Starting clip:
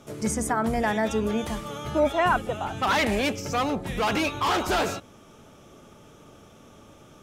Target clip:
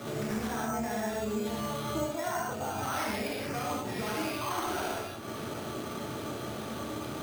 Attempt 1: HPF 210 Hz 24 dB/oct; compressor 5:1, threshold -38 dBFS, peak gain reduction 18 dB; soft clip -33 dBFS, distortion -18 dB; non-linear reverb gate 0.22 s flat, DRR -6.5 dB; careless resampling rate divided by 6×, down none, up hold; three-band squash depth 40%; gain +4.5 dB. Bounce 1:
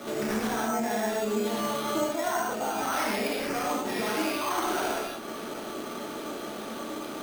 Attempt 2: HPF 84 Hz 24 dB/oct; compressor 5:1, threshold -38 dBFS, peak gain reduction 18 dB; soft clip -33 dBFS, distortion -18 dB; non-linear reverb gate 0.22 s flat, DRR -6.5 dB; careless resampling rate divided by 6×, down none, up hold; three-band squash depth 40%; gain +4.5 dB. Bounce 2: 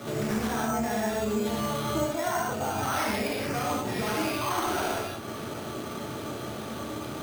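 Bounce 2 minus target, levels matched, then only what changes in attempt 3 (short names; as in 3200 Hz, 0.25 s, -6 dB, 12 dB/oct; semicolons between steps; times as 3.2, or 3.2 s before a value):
compressor: peak gain reduction -5.5 dB
change: compressor 5:1, threshold -45 dBFS, peak gain reduction 23.5 dB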